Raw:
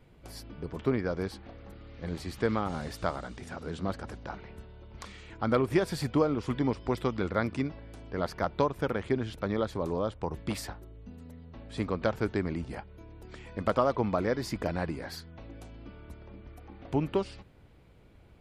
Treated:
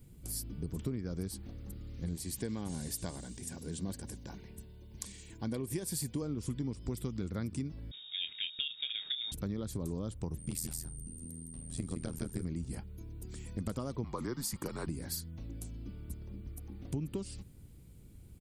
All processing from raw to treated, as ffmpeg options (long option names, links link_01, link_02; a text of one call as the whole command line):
ffmpeg -i in.wav -filter_complex "[0:a]asettb=1/sr,asplit=3[link_01][link_02][link_03];[link_01]atrim=end=2.164[link_04];[link_02]atrim=start=2.16:end=6.22,asetpts=PTS-STARTPTS,afade=type=in:duration=0.004:curve=qsin,afade=type=out:start_time=4.056:duration=0.004:curve=qsin,asuperstop=centerf=1300:order=4:qfactor=5.2,lowshelf=frequency=200:gain=-8[link_05];[link_03]atrim=start=6.216[link_06];[link_04][link_05]acrossfade=duration=0.004:curve1=hsin:curve2=qsin[link_07];[link_07][link_06]acrossfade=duration=0.004:curve1=qsin:curve2=hsin,asettb=1/sr,asplit=3[link_08][link_09][link_10];[link_08]atrim=end=7.914[link_11];[link_09]atrim=start=7.91:end=9.32,asetpts=PTS-STARTPTS,afade=type=in:duration=0.004:curve=qsin,afade=type=out:start_time=1.406:duration=0.004:curve=qsin,asplit=2[link_12][link_13];[link_13]adelay=27,volume=-10dB[link_14];[link_12][link_14]amix=inputs=2:normalize=0,atrim=end_sample=62181,lowpass=frequency=3200:width_type=q:width=0.5098,lowpass=frequency=3200:width_type=q:width=0.6013,lowpass=frequency=3200:width_type=q:width=0.9,lowpass=frequency=3200:width_type=q:width=2.563,afreqshift=-3800[link_15];[link_10]atrim=start=9.316[link_16];[link_11][link_15]acrossfade=duration=0.004:curve1=hsin:curve2=qsin[link_17];[link_17][link_16]acrossfade=duration=0.004:curve1=qsin:curve2=hsin,asettb=1/sr,asplit=3[link_18][link_19][link_20];[link_18]atrim=end=10.384[link_21];[link_19]atrim=start=10.38:end=12.45,asetpts=PTS-STARTPTS,afade=type=in:duration=0.004:curve=qsin,afade=type=out:start_time=2.066:duration=0.004:curve=qsin,aecho=1:1:162:0.531,atrim=end_sample=91287,aeval=exprs='val(0)+0.001*sin(2*PI*8800*n/s)':channel_layout=same,tremolo=f=81:d=0.947[link_22];[link_20]atrim=start=12.446[link_23];[link_21][link_22]acrossfade=duration=0.004:curve1=hsin:curve2=qsin[link_24];[link_24][link_23]acrossfade=duration=0.004:curve1=qsin:curve2=hsin,asettb=1/sr,asplit=3[link_25][link_26][link_27];[link_25]atrim=end=14.044[link_28];[link_26]atrim=start=14.04:end=14.87,asetpts=PTS-STARTPTS,afade=type=in:duration=0.004:curve=qsin,afade=type=out:start_time=0.826:duration=0.004:curve=qsin,highpass=390,equalizer=frequency=1200:width_type=o:width=0.53:gain=12.5,afreqshift=-130[link_29];[link_27]atrim=start=14.866[link_30];[link_28][link_29]acrossfade=duration=0.004:curve1=hsin:curve2=qsin[link_31];[link_31][link_30]acrossfade=duration=0.004:curve1=qsin:curve2=hsin,firequalizer=gain_entry='entry(170,0);entry(630,-17);entry(1600,-15);entry(8300,11)':delay=0.05:min_phase=1,acompressor=threshold=-37dB:ratio=6,volume=4dB" out.wav